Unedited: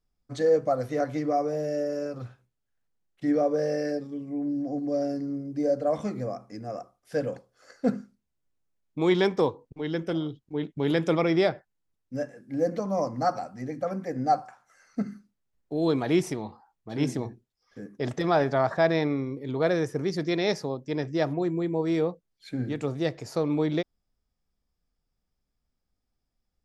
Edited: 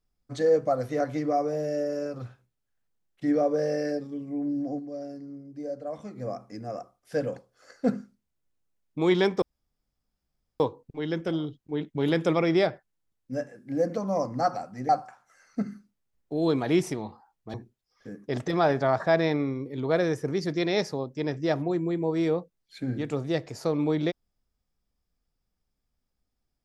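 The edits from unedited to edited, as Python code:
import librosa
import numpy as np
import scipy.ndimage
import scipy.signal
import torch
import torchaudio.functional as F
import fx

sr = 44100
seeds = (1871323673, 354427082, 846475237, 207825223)

y = fx.edit(x, sr, fx.fade_down_up(start_s=4.72, length_s=1.57, db=-9.5, fade_s=0.13),
    fx.insert_room_tone(at_s=9.42, length_s=1.18),
    fx.cut(start_s=13.71, length_s=0.58),
    fx.cut(start_s=16.94, length_s=0.31), tone=tone)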